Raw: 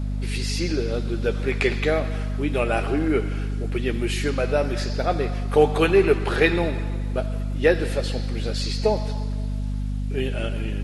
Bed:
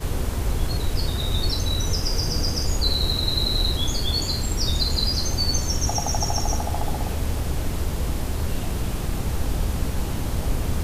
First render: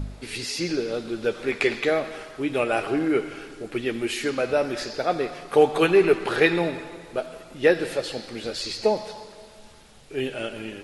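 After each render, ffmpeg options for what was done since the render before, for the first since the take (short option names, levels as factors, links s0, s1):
-af "bandreject=f=50:t=h:w=4,bandreject=f=100:t=h:w=4,bandreject=f=150:t=h:w=4,bandreject=f=200:t=h:w=4,bandreject=f=250:t=h:w=4"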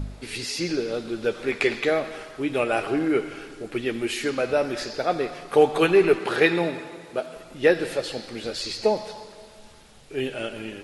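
-filter_complex "[0:a]asettb=1/sr,asplit=3[s0][s1][s2];[s0]atrim=end=6.194[s3];[s1]atrim=start=6.19:end=7.36,asetpts=PTS-STARTPTS,afade=t=in:d=0.004:c=qsin,afade=t=out:st=1.166:d=0.004:c=qsin,highpass=110[s4];[s2]atrim=start=7.356[s5];[s3][s4]acrossfade=d=0.004:c1=hsin:c2=qsin[s6];[s6][s5]acrossfade=d=0.004:c1=qsin:c2=hsin"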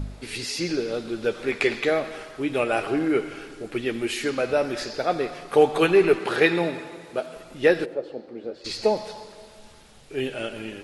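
-filter_complex "[0:a]asplit=3[s0][s1][s2];[s0]afade=t=out:st=7.84:d=0.02[s3];[s1]bandpass=f=390:t=q:w=1.2,afade=t=in:st=7.84:d=0.02,afade=t=out:st=8.64:d=0.02[s4];[s2]afade=t=in:st=8.64:d=0.02[s5];[s3][s4][s5]amix=inputs=3:normalize=0"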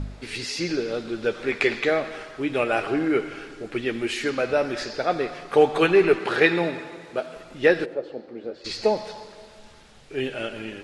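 -af "lowpass=7900,equalizer=f=1700:w=1.5:g=2.5"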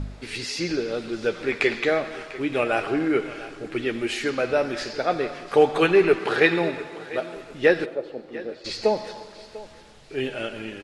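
-af "aecho=1:1:696|1392|2088:0.133|0.0413|0.0128"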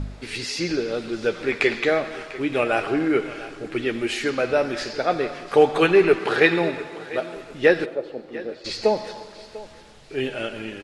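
-af "volume=1.19"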